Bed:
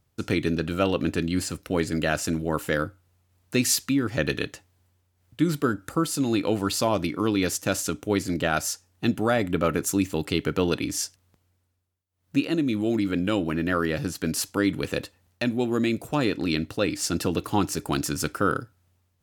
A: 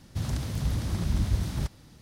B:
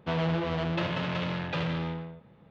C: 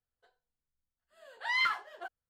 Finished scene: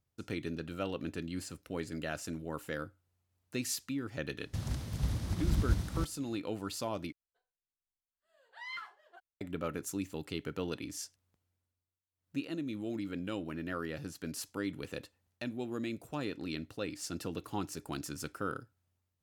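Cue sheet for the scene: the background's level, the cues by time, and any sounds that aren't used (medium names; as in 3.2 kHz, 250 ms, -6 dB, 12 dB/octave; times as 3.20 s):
bed -13.5 dB
4.38 s: add A -2 dB + upward expansion, over -37 dBFS
7.12 s: replace with C -14 dB
not used: B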